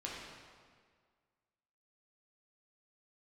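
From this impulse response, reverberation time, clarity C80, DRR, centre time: 1.8 s, 1.5 dB, -5.0 dB, 98 ms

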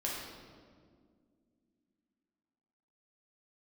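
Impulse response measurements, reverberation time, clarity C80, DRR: 2.0 s, 2.0 dB, -5.0 dB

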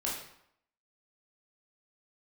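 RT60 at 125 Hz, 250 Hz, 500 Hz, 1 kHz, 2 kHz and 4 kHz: 0.65, 0.70, 0.70, 0.75, 0.65, 0.55 s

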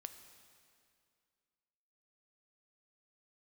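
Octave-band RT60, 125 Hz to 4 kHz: 2.3, 2.5, 2.4, 2.3, 2.2, 2.1 s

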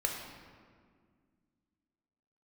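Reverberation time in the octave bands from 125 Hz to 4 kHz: 2.6, 2.9, 2.1, 1.8, 1.5, 1.1 s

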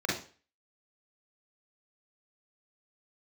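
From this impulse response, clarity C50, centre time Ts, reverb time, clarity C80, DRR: 3.0 dB, 45 ms, 0.40 s, 10.5 dB, -5.0 dB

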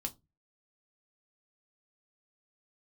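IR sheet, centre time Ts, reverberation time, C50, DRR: 5 ms, 0.20 s, 23.0 dB, 3.5 dB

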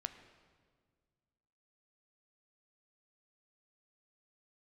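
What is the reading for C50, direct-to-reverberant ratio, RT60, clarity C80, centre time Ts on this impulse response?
10.5 dB, 8.5 dB, 1.8 s, 11.5 dB, 15 ms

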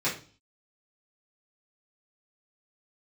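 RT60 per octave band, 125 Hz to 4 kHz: 0.55, 0.50, 0.40, 0.35, 0.35, 0.45 s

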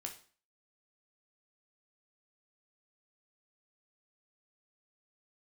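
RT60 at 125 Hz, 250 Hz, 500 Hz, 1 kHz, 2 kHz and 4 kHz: 0.40, 0.45, 0.40, 0.45, 0.40, 0.40 s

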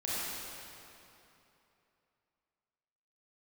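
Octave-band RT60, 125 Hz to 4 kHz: 3.1, 2.9, 3.0, 3.0, 2.7, 2.3 s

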